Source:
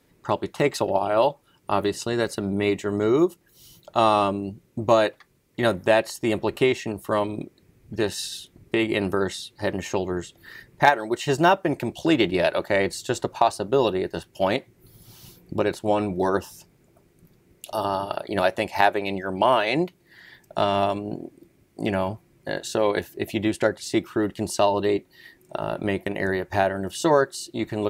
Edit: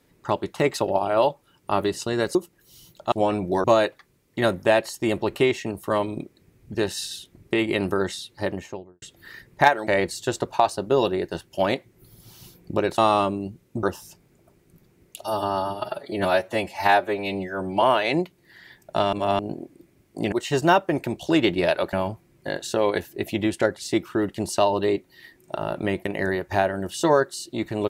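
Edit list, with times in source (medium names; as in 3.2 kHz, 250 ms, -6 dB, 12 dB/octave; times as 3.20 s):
2.35–3.23 s: delete
4.00–4.85 s: swap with 15.80–16.32 s
9.55–10.23 s: studio fade out
11.08–12.69 s: move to 21.94 s
17.70–19.44 s: stretch 1.5×
20.75–21.01 s: reverse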